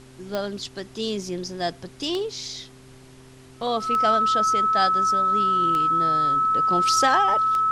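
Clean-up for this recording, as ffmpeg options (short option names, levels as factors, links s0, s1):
-af "adeclick=t=4,bandreject=f=129.9:t=h:w=4,bandreject=f=259.8:t=h:w=4,bandreject=f=389.7:t=h:w=4,bandreject=f=1300:w=30,agate=range=0.0891:threshold=0.0112"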